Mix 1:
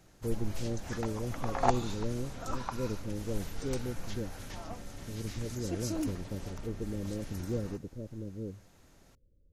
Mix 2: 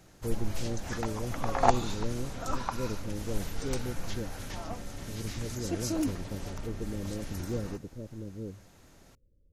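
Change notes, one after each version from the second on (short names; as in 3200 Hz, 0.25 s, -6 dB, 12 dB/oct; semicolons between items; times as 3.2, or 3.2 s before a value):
background +4.0 dB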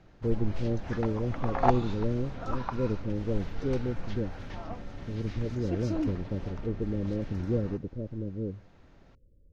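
speech +6.0 dB; master: add air absorption 240 m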